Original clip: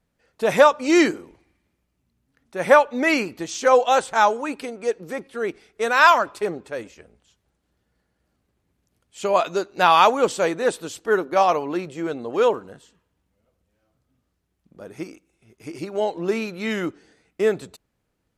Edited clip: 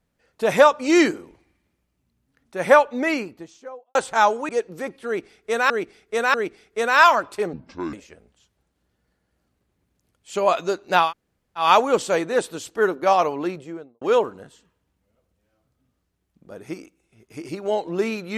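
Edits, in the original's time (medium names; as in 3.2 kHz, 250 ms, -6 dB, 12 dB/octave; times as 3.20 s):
2.73–3.95 s: studio fade out
4.49–4.80 s: delete
5.37–6.01 s: loop, 3 plays
6.56–6.81 s: speed 62%
9.93 s: insert room tone 0.58 s, crossfade 0.16 s
11.73–12.31 s: studio fade out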